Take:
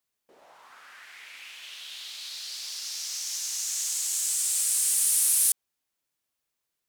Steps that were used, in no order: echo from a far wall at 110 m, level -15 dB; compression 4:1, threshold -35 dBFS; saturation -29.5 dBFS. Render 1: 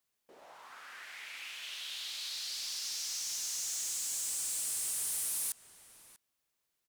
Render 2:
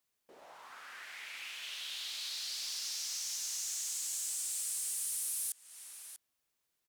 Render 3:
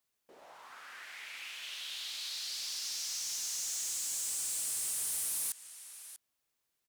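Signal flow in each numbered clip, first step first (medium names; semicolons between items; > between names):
saturation > echo from a far wall > compression; echo from a far wall > compression > saturation; echo from a far wall > saturation > compression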